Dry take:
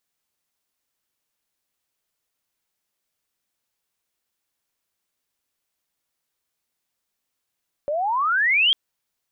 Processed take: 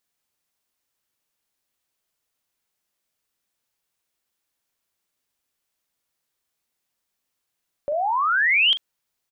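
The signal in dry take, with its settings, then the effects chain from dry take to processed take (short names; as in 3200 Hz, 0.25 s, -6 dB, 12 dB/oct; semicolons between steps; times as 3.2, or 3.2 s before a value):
chirp logarithmic 560 Hz -> 3300 Hz -21.5 dBFS -> -14 dBFS 0.85 s
doubler 42 ms -11 dB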